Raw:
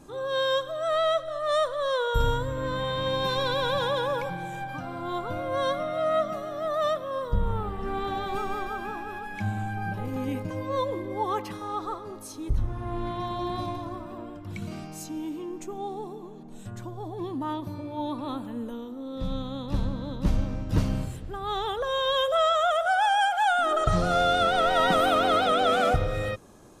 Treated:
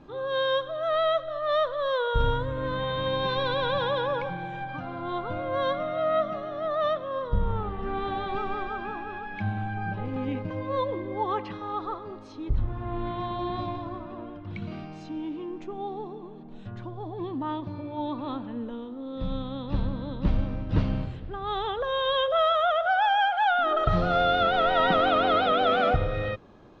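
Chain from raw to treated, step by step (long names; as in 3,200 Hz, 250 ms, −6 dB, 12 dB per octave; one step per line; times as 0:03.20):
low-pass filter 3,900 Hz 24 dB per octave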